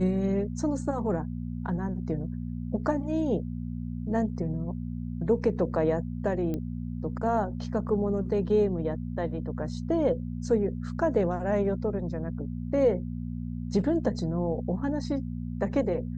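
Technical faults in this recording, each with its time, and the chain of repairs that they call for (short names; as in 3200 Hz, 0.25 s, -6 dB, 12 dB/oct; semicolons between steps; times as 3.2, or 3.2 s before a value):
hum 60 Hz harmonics 4 -34 dBFS
6.54 pop -21 dBFS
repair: de-click; de-hum 60 Hz, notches 4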